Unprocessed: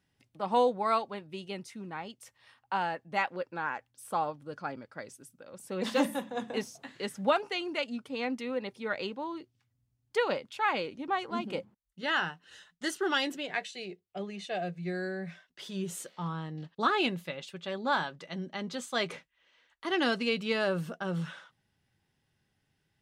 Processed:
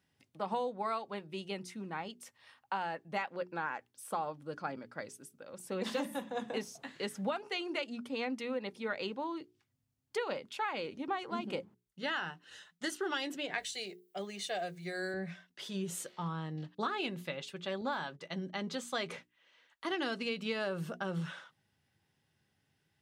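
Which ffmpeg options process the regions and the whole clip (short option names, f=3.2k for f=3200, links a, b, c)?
-filter_complex "[0:a]asettb=1/sr,asplit=3[a][b][c];[a]atrim=end=13.584[d];[b]atrim=start=13.58:end=15.14,asetpts=PTS-STARTPTS,afade=t=in:d=0.004:c=qsin,afade=t=out:st=1.556:d=0.004:c=qsin,aemphasis=mode=production:type=bsi,bandreject=f=2.6k:w=12,aeval=exprs='val(0)+0.00141*(sin(2*PI*60*n/s)+sin(2*PI*2*60*n/s)/2+sin(2*PI*3*60*n/s)/3+sin(2*PI*4*60*n/s)/4+sin(2*PI*5*60*n/s)/5)':c=same[e];[c]atrim=start=15.136[f];[d][e]acrossfade=d=0.004:c1=hsin:c2=qsin[g];[g][f]acrossfade=d=0.004:c1=qsin:c2=hsin,asettb=1/sr,asplit=3[h][i][j];[h]atrim=end=17.814[k];[i]atrim=start=17.81:end=18.88,asetpts=PTS-STARTPTS,afade=t=in:d=0.004:c=qsin,afade=t=out:st=1.066:d=0.004:c=qsin,agate=range=-13dB:threshold=-51dB:ratio=16:release=100:detection=peak,deesser=1[l];[j]atrim=start=18.876[m];[k][l]acrossfade=d=0.004:c1=hsin:c2=qsin[n];[n][m]acrossfade=d=0.004:c1=qsin:c2=hsin,acompressor=threshold=-32dB:ratio=6,highpass=71,bandreject=f=60:t=h:w=6,bandreject=f=120:t=h:w=6,bandreject=f=180:t=h:w=6,bandreject=f=240:t=h:w=6,bandreject=f=300:t=h:w=6,bandreject=f=360:t=h:w=6,bandreject=f=420:t=h:w=6"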